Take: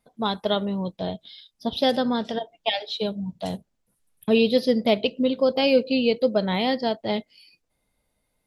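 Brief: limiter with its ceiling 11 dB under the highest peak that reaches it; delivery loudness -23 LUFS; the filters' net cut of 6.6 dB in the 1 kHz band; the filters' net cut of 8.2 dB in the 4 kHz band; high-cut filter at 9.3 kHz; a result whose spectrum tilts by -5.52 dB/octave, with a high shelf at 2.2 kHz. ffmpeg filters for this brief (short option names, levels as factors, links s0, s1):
-af "lowpass=9300,equalizer=f=1000:t=o:g=-8.5,highshelf=f=2200:g=-7,equalizer=f=4000:t=o:g=-3.5,volume=2.51,alimiter=limit=0.224:level=0:latency=1"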